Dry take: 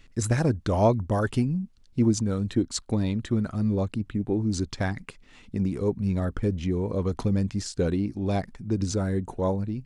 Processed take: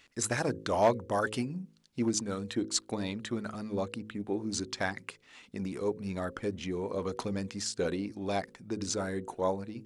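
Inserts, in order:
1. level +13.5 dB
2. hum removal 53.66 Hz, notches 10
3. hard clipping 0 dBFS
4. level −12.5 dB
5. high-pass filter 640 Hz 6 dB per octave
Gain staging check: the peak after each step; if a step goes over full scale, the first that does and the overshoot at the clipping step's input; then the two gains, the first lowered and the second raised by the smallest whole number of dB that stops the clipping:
+4.0, +5.0, 0.0, −12.5, −12.0 dBFS
step 1, 5.0 dB
step 1 +8.5 dB, step 4 −7.5 dB

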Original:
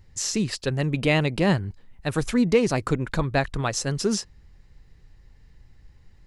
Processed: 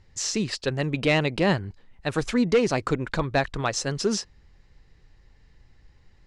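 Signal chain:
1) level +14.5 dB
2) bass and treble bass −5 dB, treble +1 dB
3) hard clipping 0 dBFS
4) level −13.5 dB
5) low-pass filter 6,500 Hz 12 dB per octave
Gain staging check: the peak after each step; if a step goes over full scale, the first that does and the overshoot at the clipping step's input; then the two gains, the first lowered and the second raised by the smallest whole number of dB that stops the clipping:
+8.0, +7.0, 0.0, −13.5, −13.0 dBFS
step 1, 7.0 dB
step 1 +7.5 dB, step 4 −6.5 dB

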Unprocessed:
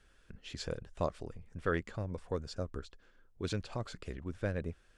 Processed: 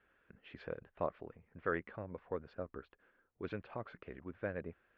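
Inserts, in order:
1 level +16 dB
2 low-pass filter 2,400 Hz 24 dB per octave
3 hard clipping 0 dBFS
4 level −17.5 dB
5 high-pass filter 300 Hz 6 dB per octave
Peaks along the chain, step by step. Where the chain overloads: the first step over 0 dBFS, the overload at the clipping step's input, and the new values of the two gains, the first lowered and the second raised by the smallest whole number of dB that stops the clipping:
−3.0, −3.0, −3.0, −20.5, −21.0 dBFS
no step passes full scale

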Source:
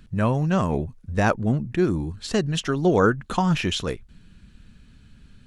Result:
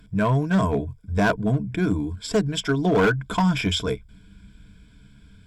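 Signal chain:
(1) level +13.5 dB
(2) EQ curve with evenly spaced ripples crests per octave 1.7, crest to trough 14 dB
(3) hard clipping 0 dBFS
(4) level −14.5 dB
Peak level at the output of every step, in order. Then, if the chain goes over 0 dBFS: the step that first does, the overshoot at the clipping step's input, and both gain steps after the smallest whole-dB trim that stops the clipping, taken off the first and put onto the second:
+6.0, +9.5, 0.0, −14.5 dBFS
step 1, 9.5 dB
step 1 +3.5 dB, step 4 −4.5 dB

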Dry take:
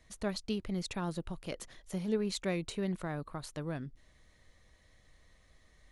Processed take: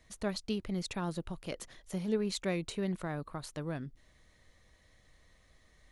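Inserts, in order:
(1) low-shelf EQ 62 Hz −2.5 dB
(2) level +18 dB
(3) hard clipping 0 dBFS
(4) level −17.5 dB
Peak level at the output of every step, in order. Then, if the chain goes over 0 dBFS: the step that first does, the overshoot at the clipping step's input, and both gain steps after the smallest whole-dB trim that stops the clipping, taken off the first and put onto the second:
−20.5, −2.5, −2.5, −20.0 dBFS
no step passes full scale

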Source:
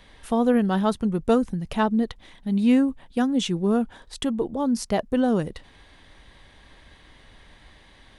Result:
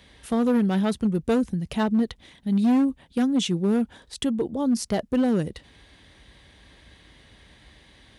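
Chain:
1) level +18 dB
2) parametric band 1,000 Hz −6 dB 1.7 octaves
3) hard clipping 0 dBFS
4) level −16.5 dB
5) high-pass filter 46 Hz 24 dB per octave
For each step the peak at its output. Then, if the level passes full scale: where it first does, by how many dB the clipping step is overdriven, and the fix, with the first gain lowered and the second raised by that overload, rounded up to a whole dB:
+9.5, +8.0, 0.0, −16.5, −13.5 dBFS
step 1, 8.0 dB
step 1 +10 dB, step 4 −8.5 dB

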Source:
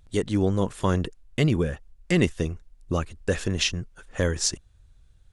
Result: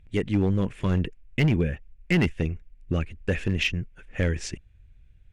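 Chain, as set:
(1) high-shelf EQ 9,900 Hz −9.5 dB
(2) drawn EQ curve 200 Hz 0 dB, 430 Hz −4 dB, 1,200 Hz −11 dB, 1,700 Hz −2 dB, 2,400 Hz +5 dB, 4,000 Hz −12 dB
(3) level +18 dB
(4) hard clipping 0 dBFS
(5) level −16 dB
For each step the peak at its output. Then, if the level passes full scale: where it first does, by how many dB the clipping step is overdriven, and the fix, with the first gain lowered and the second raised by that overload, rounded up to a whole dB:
−7.0, −8.5, +9.5, 0.0, −16.0 dBFS
step 3, 9.5 dB
step 3 +8 dB, step 5 −6 dB

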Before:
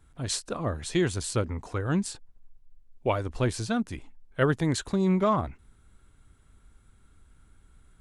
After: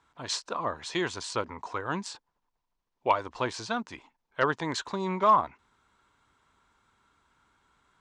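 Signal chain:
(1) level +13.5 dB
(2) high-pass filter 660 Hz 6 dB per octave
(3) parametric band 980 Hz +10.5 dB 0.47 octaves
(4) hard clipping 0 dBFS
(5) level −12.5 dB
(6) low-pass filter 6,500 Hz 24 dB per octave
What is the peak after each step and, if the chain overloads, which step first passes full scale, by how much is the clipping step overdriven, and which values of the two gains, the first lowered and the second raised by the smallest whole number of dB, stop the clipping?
+2.0, +1.5, +4.0, 0.0, −12.5, −12.0 dBFS
step 1, 4.0 dB
step 1 +9.5 dB, step 5 −8.5 dB

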